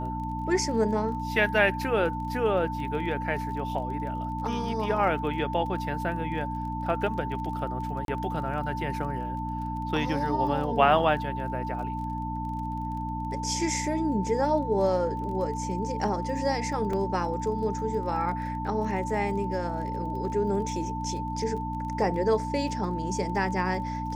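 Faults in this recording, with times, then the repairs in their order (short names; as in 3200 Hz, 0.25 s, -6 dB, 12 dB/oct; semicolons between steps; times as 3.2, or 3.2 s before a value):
crackle 25/s -38 dBFS
hum 60 Hz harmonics 5 -34 dBFS
tone 890 Hz -33 dBFS
8.05–8.08 gap 32 ms
16.93 gap 3.3 ms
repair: de-click; de-hum 60 Hz, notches 5; notch 890 Hz, Q 30; interpolate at 8.05, 32 ms; interpolate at 16.93, 3.3 ms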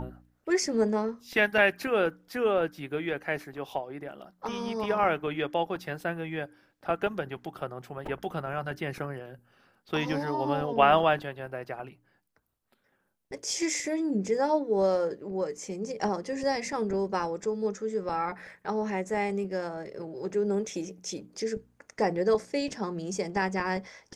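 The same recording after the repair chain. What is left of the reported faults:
none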